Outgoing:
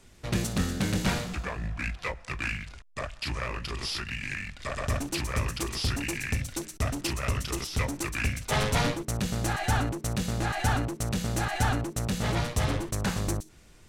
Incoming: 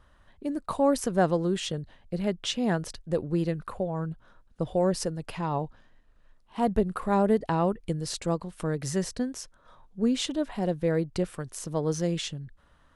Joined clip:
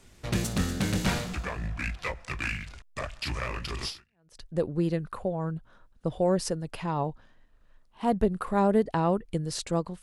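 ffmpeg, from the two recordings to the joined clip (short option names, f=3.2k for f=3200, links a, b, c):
-filter_complex "[0:a]apad=whole_dur=10.02,atrim=end=10.02,atrim=end=4.42,asetpts=PTS-STARTPTS[a];[1:a]atrim=start=2.43:end=8.57,asetpts=PTS-STARTPTS[b];[a][b]acrossfade=d=0.54:c1=exp:c2=exp"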